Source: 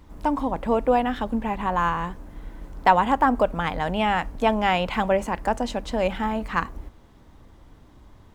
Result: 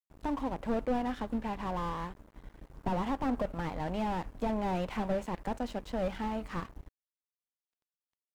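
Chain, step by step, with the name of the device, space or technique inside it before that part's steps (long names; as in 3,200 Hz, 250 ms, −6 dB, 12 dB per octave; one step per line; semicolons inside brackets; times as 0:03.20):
early transistor amplifier (dead-zone distortion −39.5 dBFS; slew-rate limiting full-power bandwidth 46 Hz)
level −7 dB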